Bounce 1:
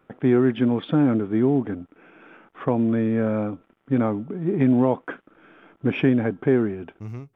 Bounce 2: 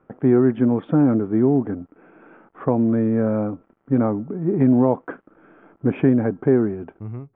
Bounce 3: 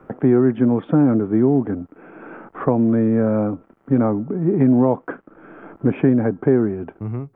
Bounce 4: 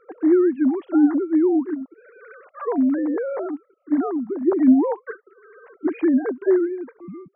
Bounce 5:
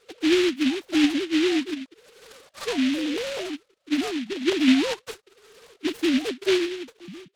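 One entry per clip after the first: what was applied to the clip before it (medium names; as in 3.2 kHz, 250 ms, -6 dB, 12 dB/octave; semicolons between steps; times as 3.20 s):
low-pass 1.3 kHz 12 dB/octave; trim +2.5 dB
three bands compressed up and down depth 40%; trim +1.5 dB
formants replaced by sine waves; trim -2.5 dB
delay time shaken by noise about 2.6 kHz, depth 0.16 ms; trim -4 dB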